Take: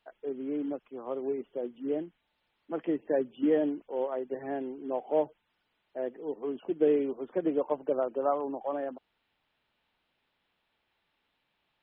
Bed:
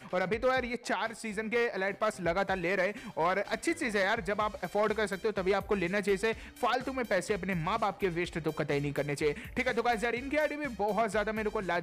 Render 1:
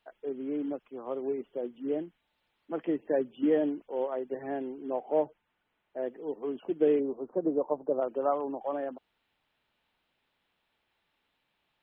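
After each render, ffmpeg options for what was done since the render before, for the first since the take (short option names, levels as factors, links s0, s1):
-filter_complex "[0:a]asettb=1/sr,asplit=3[s0][s1][s2];[s0]atrim=end=4.944[s3];[s1]atrim=start=4.94:end=6.03,asetpts=PTS-STARTPTS,afade=t=in:d=0.004:c=qsin,afade=t=out:st=1.086:d=0.004:c=qsin,lowpass=2600[s4];[s2]atrim=start=6.026[s5];[s3][s4]acrossfade=d=0.004:c1=hsin:c2=qsin[s6];[s6][s5]acrossfade=d=0.004:c1=qsin:c2=hsin,asplit=3[s7][s8][s9];[s7]afade=t=out:st=6.99:d=0.02[s10];[s8]lowpass=f=1100:w=0.5412,lowpass=f=1100:w=1.3066,afade=t=in:st=6.99:d=0.02,afade=t=out:st=8:d=0.02[s11];[s9]afade=t=in:st=8:d=0.02[s12];[s10][s11][s12]amix=inputs=3:normalize=0"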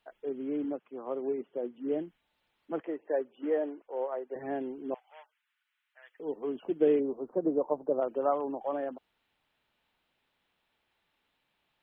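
-filter_complex "[0:a]asettb=1/sr,asplit=3[s0][s1][s2];[s0]atrim=end=0.644[s3];[s1]atrim=start=0.64:end=1.92,asetpts=PTS-STARTPTS,afade=t=in:d=0.004:c=qsin,afade=t=out:st=1.276:d=0.004:c=qsin,highpass=140,lowpass=2700[s4];[s2]atrim=start=1.916[s5];[s3][s4]acrossfade=d=0.004:c1=hsin:c2=qsin[s6];[s6][s5]acrossfade=d=0.004:c1=qsin:c2=hsin,asettb=1/sr,asplit=3[s7][s8][s9];[s7]atrim=end=2.804[s10];[s8]atrim=start=2.8:end=4.36,asetpts=PTS-STARTPTS,afade=t=in:d=0.004:c=qsin,afade=t=out:st=1.556:d=0.004:c=qsin,acrossover=split=370 2500:gain=0.1 1 0.0794[s11][s12][s13];[s11][s12][s13]amix=inputs=3:normalize=0[s14];[s9]atrim=start=4.356[s15];[s10][s14]acrossfade=d=0.004:c1=hsin:c2=qsin[s16];[s16][s15]acrossfade=d=0.004:c1=qsin:c2=hsin,asettb=1/sr,asplit=3[s17][s18][s19];[s17]atrim=end=4.944[s20];[s18]atrim=start=4.94:end=6.2,asetpts=PTS-STARTPTS,afade=t=in:d=0.004:c=qsin,afade=t=out:st=1.256:d=0.004:c=qsin,highpass=f=1400:w=0.5412,highpass=f=1400:w=1.3066[s21];[s19]atrim=start=6.196[s22];[s20][s21]acrossfade=d=0.004:c1=hsin:c2=qsin[s23];[s23][s22]acrossfade=d=0.004:c1=qsin:c2=hsin"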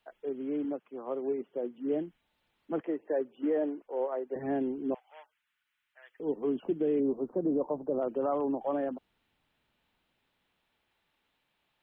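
-filter_complex "[0:a]acrossover=split=330|1300[s0][s1][s2];[s0]dynaudnorm=f=580:g=9:m=2.51[s3];[s3][s1][s2]amix=inputs=3:normalize=0,alimiter=limit=0.0841:level=0:latency=1:release=29"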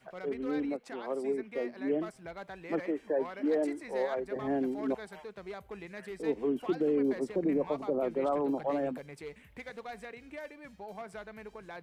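-filter_complex "[1:a]volume=0.2[s0];[0:a][s0]amix=inputs=2:normalize=0"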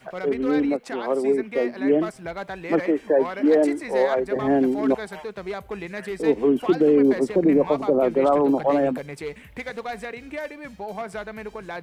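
-af "volume=3.76"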